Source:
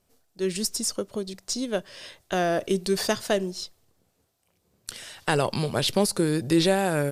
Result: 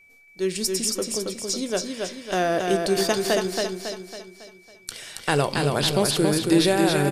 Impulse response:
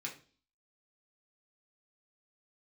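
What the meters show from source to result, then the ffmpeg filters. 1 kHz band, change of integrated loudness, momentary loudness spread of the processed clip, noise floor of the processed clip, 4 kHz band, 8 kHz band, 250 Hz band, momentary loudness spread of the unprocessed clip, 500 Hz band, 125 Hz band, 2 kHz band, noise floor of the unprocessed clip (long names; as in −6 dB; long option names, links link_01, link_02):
+3.0 dB, +2.5 dB, 15 LU, −53 dBFS, +3.5 dB, +4.0 dB, +3.0 dB, 16 LU, +3.0 dB, +2.0 dB, +3.5 dB, −71 dBFS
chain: -filter_complex "[0:a]aeval=exprs='val(0)+0.002*sin(2*PI*2300*n/s)':channel_layout=same,aecho=1:1:276|552|828|1104|1380|1656:0.631|0.297|0.139|0.0655|0.0308|0.0145,asplit=2[link_01][link_02];[1:a]atrim=start_sample=2205,asetrate=43659,aresample=44100[link_03];[link_02][link_03]afir=irnorm=-1:irlink=0,volume=-8dB[link_04];[link_01][link_04]amix=inputs=2:normalize=0"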